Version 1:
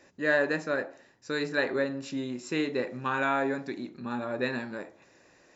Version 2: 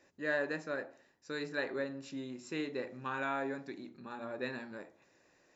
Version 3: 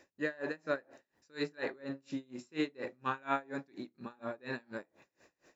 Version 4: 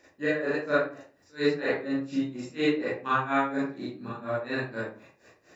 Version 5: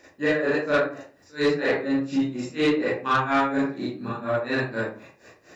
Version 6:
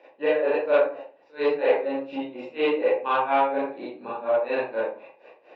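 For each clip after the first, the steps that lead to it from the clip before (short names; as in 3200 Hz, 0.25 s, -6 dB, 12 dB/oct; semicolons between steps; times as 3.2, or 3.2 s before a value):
notches 60/120/180/240 Hz; gain -8.5 dB
dB-linear tremolo 4.2 Hz, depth 29 dB; gain +6.5 dB
reverb RT60 0.40 s, pre-delay 31 ms, DRR -9.5 dB
soft clip -21 dBFS, distortion -14 dB; gain +6.5 dB
speaker cabinet 450–3000 Hz, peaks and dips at 520 Hz +9 dB, 860 Hz +8 dB, 1300 Hz -7 dB, 1800 Hz -9 dB, 2700 Hz +4 dB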